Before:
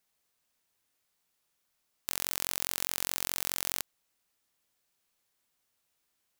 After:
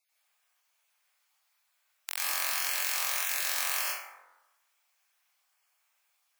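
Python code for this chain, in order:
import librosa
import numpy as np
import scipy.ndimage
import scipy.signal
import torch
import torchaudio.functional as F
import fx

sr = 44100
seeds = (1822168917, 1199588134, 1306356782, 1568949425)

y = fx.spec_dropout(x, sr, seeds[0], share_pct=23)
y = scipy.signal.sosfilt(scipy.signal.butter(4, 690.0, 'highpass', fs=sr, output='sos'), y)
y = fx.peak_eq(y, sr, hz=2300.0, db=5.0, octaves=0.73)
y = fx.rev_plate(y, sr, seeds[1], rt60_s=1.1, hf_ratio=0.4, predelay_ms=80, drr_db=-7.5)
y = y * 10.0 ** (-1.5 / 20.0)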